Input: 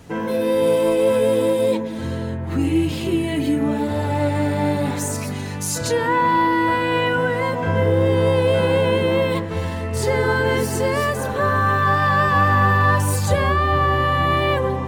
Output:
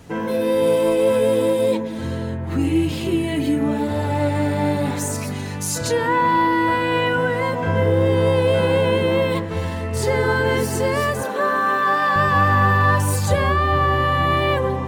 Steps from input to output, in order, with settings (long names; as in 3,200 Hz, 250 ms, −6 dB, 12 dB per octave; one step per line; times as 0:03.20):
0:11.23–0:12.16: high-pass filter 220 Hz 24 dB per octave